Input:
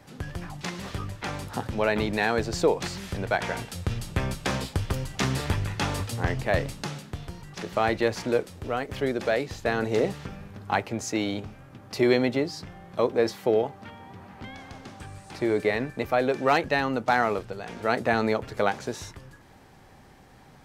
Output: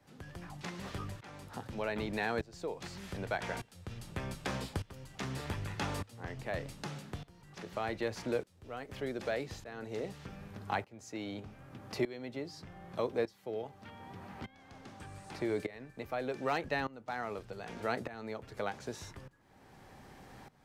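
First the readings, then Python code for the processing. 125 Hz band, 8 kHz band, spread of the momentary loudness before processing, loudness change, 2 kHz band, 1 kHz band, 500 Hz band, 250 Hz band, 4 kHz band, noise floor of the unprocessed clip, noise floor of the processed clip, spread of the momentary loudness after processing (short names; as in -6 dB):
-11.5 dB, -12.5 dB, 16 LU, -12.5 dB, -11.5 dB, -12.0 dB, -12.0 dB, -12.0 dB, -11.5 dB, -52 dBFS, -62 dBFS, 14 LU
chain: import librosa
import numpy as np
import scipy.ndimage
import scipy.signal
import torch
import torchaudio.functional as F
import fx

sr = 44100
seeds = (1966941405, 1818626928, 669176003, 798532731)

y = fx.tremolo_shape(x, sr, shape='saw_up', hz=0.83, depth_pct=90)
y = fx.band_squash(y, sr, depth_pct=40)
y = F.gain(torch.from_numpy(y), -7.0).numpy()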